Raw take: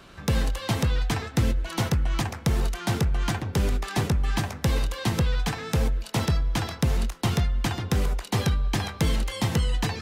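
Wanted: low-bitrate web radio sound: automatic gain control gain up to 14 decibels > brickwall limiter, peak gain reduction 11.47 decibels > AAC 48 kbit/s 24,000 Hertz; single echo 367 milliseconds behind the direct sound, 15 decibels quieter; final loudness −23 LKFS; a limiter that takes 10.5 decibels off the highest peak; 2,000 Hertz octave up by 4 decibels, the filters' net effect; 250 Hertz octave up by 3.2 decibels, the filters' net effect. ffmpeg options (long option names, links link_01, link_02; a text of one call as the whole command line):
ffmpeg -i in.wav -af "equalizer=frequency=250:width_type=o:gain=4.5,equalizer=frequency=2000:width_type=o:gain=5,alimiter=limit=-20dB:level=0:latency=1,aecho=1:1:367:0.178,dynaudnorm=maxgain=14dB,alimiter=level_in=6.5dB:limit=-24dB:level=0:latency=1,volume=-6.5dB,volume=16dB" -ar 24000 -c:a aac -b:a 48k out.aac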